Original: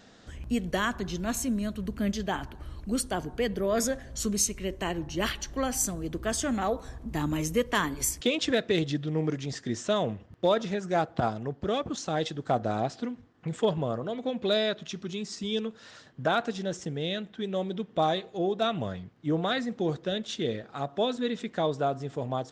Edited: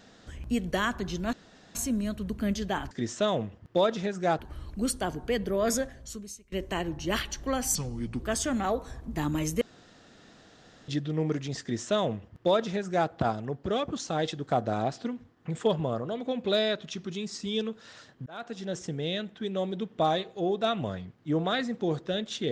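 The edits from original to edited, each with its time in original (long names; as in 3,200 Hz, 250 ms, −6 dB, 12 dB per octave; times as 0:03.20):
0:01.33: splice in room tone 0.42 s
0:03.90–0:04.62: fade out quadratic, to −23.5 dB
0:05.85–0:06.18: play speed 73%
0:07.59–0:08.86: fill with room tone
0:09.59–0:11.07: duplicate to 0:02.49
0:16.24–0:16.78: fade in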